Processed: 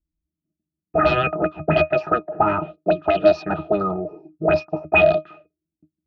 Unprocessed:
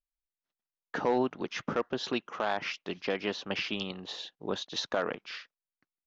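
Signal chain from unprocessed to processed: dynamic bell 460 Hz, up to +7 dB, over -42 dBFS, Q 1.3; formant shift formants +6 st; sine folder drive 14 dB, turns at -10 dBFS; pitch-class resonator D#, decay 0.12 s; touch-sensitive low-pass 250–4300 Hz up, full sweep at -23 dBFS; trim +8.5 dB

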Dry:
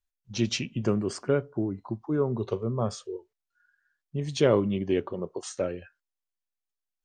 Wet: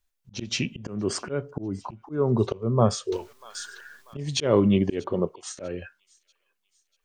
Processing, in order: 0.43–1.20 s: compression 2.5:1, threshold -27 dBFS, peak gain reduction 5.5 dB; slow attack 265 ms; on a send: feedback echo behind a high-pass 641 ms, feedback 44%, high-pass 2.8 kHz, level -22.5 dB; 3.12–4.17 s: on the sum: spectrum-flattening compressor 2:1; trim +8.5 dB

